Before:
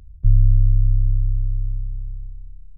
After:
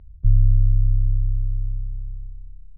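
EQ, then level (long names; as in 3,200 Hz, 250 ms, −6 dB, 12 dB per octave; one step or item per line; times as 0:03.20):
high-frequency loss of the air 400 metres
−1.5 dB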